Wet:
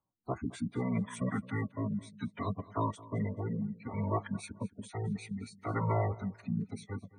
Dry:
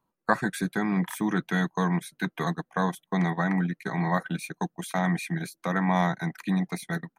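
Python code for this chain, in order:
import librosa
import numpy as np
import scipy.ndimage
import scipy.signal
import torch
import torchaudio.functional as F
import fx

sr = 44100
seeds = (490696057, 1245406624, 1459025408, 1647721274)

p1 = fx.rotary(x, sr, hz=0.65)
p2 = fx.pitch_keep_formants(p1, sr, semitones=-9.0)
p3 = fx.spec_gate(p2, sr, threshold_db=-20, keep='strong')
p4 = p3 + fx.echo_feedback(p3, sr, ms=216, feedback_pct=27, wet_db=-20.0, dry=0)
y = p4 * librosa.db_to_amplitude(-5.0)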